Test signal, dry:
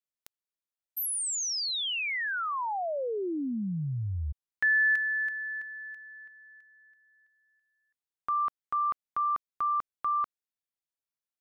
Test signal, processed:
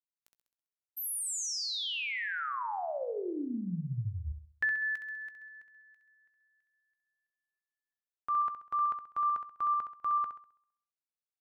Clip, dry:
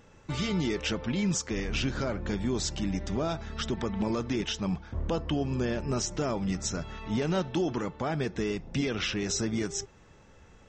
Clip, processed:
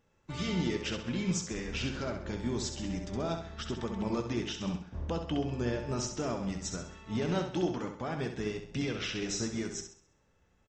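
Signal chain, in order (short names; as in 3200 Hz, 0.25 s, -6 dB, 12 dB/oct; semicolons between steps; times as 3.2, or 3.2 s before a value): doubler 17 ms -13.5 dB; on a send: flutter echo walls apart 11.3 m, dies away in 0.69 s; on the sum: upward expander 1.5:1, over -50 dBFS; gain -2.5 dB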